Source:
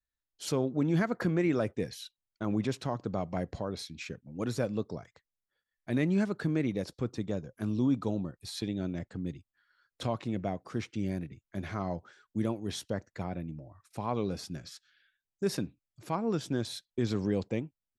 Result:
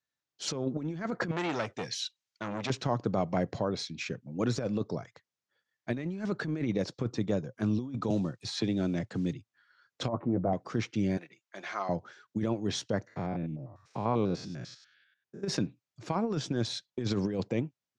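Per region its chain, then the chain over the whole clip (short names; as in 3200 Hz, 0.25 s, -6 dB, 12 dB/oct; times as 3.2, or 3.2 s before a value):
1.31–2.7 tilt shelf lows -6.5 dB, about 1300 Hz + core saturation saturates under 1500 Hz
8.1–9.35 block floating point 7-bit + three-band squash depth 40%
10.08–10.53 LPF 1200 Hz 24 dB/oct + doubler 12 ms -6 dB
11.17–11.89 HPF 700 Hz + comb 5.7 ms, depth 31%
13.07–15.48 stepped spectrum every 0.1 s + high shelf 6200 Hz -8 dB
whole clip: Chebyshev band-pass 110–6500 Hz, order 3; negative-ratio compressor -32 dBFS, ratio -0.5; gain +3.5 dB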